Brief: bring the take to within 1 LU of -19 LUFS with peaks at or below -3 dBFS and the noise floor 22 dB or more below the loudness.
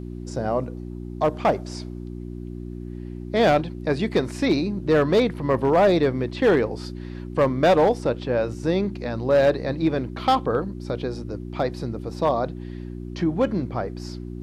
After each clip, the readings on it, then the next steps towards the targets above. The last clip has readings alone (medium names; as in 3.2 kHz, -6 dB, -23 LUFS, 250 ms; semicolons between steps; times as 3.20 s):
clipped samples 0.9%; clipping level -12.0 dBFS; hum 60 Hz; highest harmonic 360 Hz; hum level -32 dBFS; loudness -23.0 LUFS; peak level -12.0 dBFS; loudness target -19.0 LUFS
-> clip repair -12 dBFS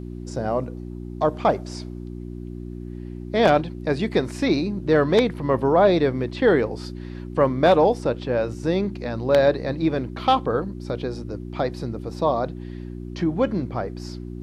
clipped samples 0.0%; hum 60 Hz; highest harmonic 360 Hz; hum level -31 dBFS
-> de-hum 60 Hz, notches 6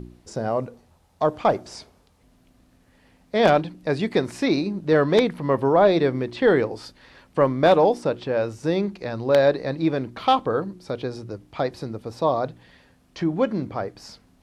hum not found; loudness -22.5 LUFS; peak level -3.0 dBFS; loudness target -19.0 LUFS
-> trim +3.5 dB; peak limiter -3 dBFS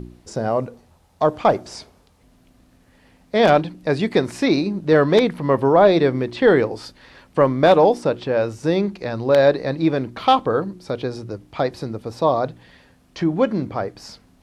loudness -19.0 LUFS; peak level -3.0 dBFS; noise floor -56 dBFS